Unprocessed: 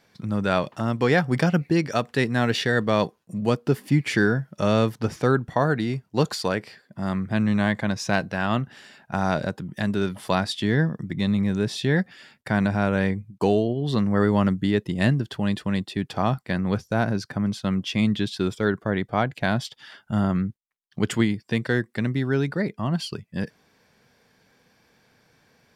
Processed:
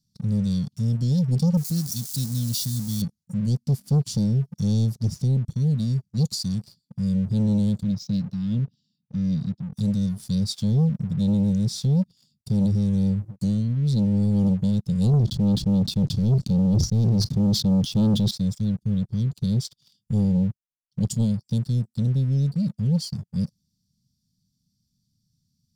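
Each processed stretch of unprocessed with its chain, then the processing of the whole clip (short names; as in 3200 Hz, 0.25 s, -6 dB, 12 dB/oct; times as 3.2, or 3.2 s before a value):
1.57–3.02 switching spikes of -23 dBFS + low shelf 370 Hz -6 dB
7.83–9.73 BPF 120–5200 Hz + air absorption 110 m + three-band expander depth 40%
15.13–18.31 LPF 3200 Hz + sample leveller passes 1 + sustainer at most 33 dB/s
whole clip: inverse Chebyshev band-stop 430–2200 Hz, stop band 50 dB; high shelf 5500 Hz -6.5 dB; sample leveller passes 2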